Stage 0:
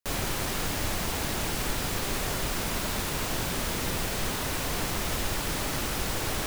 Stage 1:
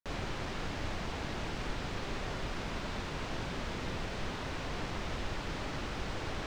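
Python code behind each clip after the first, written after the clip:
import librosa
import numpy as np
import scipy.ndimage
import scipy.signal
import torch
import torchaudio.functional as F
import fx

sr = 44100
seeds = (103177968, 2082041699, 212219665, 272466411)

y = fx.air_absorb(x, sr, metres=150.0)
y = y * 10.0 ** (-6.0 / 20.0)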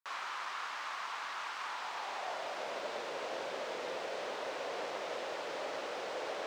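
y = fx.filter_sweep_highpass(x, sr, from_hz=1100.0, to_hz=530.0, start_s=1.55, end_s=2.84, q=2.8)
y = y * 10.0 ** (-2.0 / 20.0)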